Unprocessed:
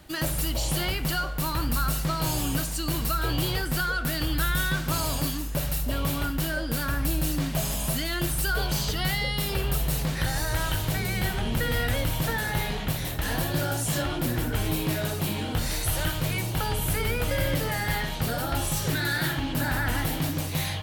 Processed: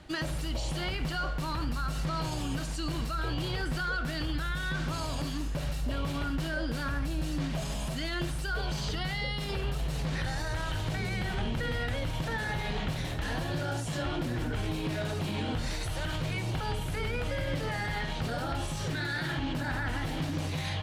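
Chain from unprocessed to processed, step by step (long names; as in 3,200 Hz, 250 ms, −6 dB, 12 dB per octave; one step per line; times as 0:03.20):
brickwall limiter −23 dBFS, peak gain reduction 9.5 dB
high-frequency loss of the air 73 metres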